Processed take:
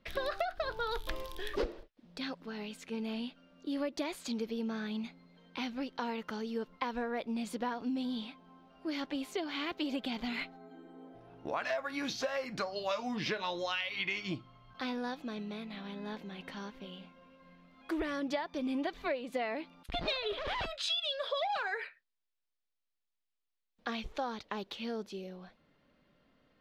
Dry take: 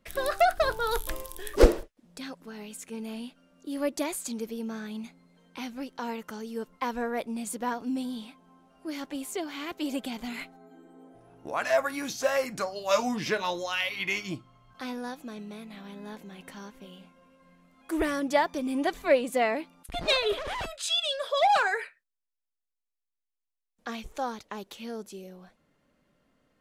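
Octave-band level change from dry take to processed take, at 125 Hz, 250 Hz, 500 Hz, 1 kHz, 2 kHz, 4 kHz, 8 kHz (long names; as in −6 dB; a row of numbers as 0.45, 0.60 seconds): −7.5, −3.5, −8.5, −8.5, −6.5, −4.5, −12.5 decibels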